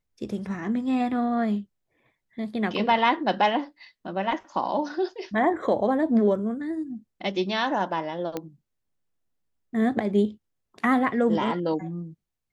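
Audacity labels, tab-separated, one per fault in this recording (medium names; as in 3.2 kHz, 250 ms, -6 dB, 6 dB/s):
8.370000	8.370000	pop -16 dBFS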